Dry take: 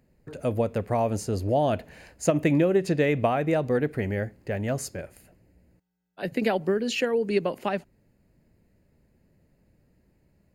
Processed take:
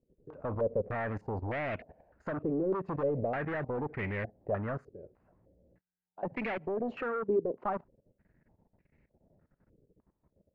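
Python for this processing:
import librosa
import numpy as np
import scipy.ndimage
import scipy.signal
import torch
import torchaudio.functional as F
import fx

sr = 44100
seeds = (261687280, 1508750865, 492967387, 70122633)

y = np.clip(10.0 ** (26.0 / 20.0) * x, -1.0, 1.0) / 10.0 ** (26.0 / 20.0)
y = fx.level_steps(y, sr, step_db=16)
y = fx.filter_held_lowpass(y, sr, hz=3.3, low_hz=430.0, high_hz=2200.0)
y = y * librosa.db_to_amplitude(-3.5)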